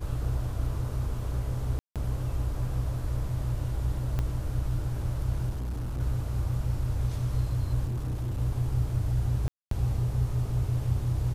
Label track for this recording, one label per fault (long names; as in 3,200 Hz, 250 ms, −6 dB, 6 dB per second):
1.790000	1.960000	drop-out 167 ms
4.190000	4.190000	click −18 dBFS
5.490000	6.000000	clipping −29 dBFS
7.870000	8.400000	clipping −27.5 dBFS
9.480000	9.710000	drop-out 233 ms